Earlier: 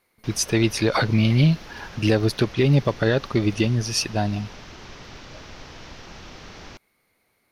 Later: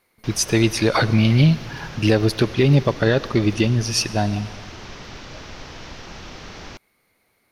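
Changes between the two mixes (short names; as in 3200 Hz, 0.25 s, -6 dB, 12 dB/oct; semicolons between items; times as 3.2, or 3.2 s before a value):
background +4.0 dB; reverb: on, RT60 1.7 s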